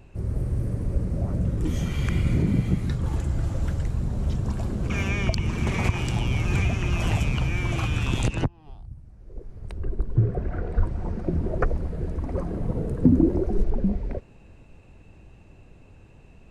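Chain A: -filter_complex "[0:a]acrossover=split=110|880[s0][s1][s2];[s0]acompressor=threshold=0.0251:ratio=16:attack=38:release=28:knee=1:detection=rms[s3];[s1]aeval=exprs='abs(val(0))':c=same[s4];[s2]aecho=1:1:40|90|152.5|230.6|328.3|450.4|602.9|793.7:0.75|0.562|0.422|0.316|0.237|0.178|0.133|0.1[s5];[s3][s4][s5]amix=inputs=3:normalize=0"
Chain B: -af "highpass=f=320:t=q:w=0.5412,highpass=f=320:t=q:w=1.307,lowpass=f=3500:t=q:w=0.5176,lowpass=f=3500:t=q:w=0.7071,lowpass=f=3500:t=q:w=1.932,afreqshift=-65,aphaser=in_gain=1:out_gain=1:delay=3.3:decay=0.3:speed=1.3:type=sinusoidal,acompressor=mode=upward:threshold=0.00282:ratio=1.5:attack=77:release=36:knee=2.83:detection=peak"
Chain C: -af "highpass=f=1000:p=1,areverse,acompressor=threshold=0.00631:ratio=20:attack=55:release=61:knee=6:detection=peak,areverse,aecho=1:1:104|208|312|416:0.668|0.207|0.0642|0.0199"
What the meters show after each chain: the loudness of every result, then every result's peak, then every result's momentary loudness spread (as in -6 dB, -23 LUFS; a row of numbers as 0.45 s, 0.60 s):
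-31.0 LUFS, -34.0 LUFS, -41.5 LUFS; -6.5 dBFS, -10.5 dBFS, -18.5 dBFS; 11 LU, 12 LU, 22 LU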